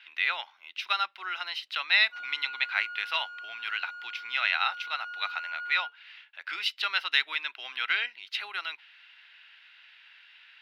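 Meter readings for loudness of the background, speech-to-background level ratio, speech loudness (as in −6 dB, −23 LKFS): −40.0 LKFS, 10.5 dB, −29.5 LKFS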